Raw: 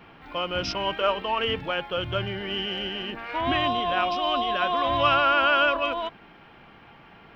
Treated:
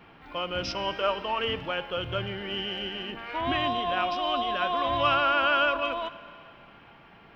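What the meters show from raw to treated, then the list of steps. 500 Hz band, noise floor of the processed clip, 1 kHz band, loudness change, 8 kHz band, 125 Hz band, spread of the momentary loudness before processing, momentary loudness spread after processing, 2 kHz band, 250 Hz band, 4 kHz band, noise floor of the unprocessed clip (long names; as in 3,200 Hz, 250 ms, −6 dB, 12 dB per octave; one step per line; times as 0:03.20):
−3.0 dB, −53 dBFS, −3.0 dB, −3.0 dB, can't be measured, −3.0 dB, 11 LU, 12 LU, −3.0 dB, −3.0 dB, −3.0 dB, −51 dBFS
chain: four-comb reverb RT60 2.7 s, combs from 33 ms, DRR 15 dB
level −3 dB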